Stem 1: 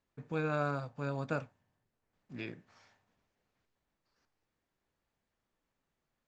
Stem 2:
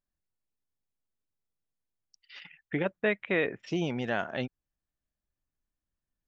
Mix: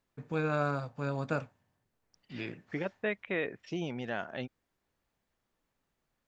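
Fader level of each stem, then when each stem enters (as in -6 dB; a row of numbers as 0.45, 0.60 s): +2.5, -5.5 dB; 0.00, 0.00 s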